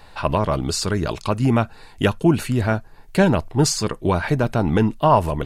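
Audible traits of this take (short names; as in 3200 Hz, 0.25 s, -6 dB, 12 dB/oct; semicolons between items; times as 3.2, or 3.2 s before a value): noise floor -44 dBFS; spectral tilt -5.5 dB/oct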